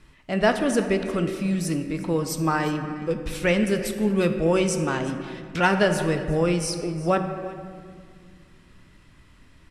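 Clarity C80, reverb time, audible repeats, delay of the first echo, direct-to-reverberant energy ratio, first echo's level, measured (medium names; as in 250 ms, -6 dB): 8.5 dB, 2.0 s, 1, 359 ms, 5.5 dB, -18.5 dB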